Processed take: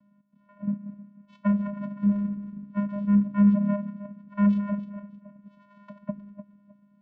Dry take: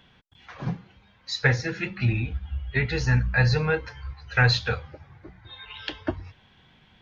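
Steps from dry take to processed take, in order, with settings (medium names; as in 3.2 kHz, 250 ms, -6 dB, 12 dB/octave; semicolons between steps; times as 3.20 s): backward echo that repeats 156 ms, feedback 48%, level -11 dB; vocoder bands 4, square 203 Hz; low-pass 1.2 kHz 12 dB/octave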